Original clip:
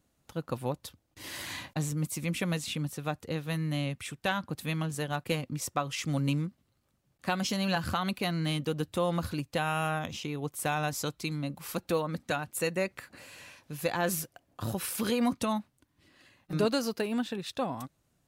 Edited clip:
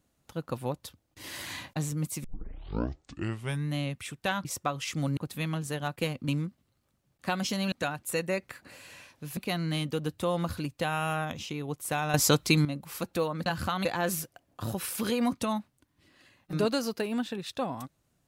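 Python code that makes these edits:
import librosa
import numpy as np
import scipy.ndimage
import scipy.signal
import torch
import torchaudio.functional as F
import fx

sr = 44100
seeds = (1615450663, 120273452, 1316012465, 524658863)

y = fx.edit(x, sr, fx.tape_start(start_s=2.24, length_s=1.49),
    fx.move(start_s=5.56, length_s=0.72, to_s=4.45),
    fx.swap(start_s=7.72, length_s=0.39, other_s=12.2, other_length_s=1.65),
    fx.clip_gain(start_s=10.88, length_s=0.51, db=11.0), tone=tone)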